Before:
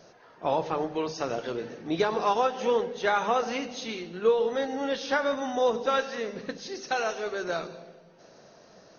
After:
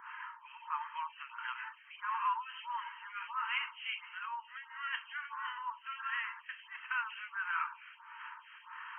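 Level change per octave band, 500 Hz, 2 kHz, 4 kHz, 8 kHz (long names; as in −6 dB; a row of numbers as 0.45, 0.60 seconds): below −40 dB, −3.5 dB, −8.5 dB, can't be measured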